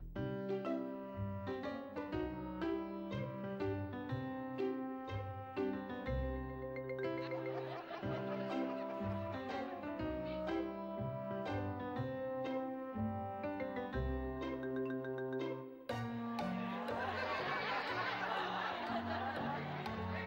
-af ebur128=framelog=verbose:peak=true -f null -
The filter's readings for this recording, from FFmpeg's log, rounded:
Integrated loudness:
  I:         -41.6 LUFS
  Threshold: -51.6 LUFS
Loudness range:
  LRA:         2.9 LU
  Threshold: -61.6 LUFS
  LRA low:   -42.5 LUFS
  LRA high:  -39.6 LUFS
True peak:
  Peak:      -28.3 dBFS